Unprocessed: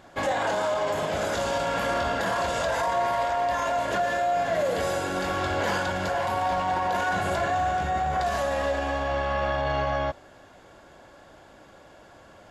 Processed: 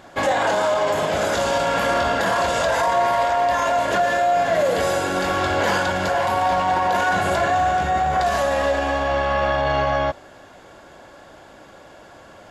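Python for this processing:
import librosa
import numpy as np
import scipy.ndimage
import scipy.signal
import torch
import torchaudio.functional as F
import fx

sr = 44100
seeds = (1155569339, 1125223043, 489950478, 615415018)

y = fx.low_shelf(x, sr, hz=140.0, db=-4.0)
y = F.gain(torch.from_numpy(y), 6.5).numpy()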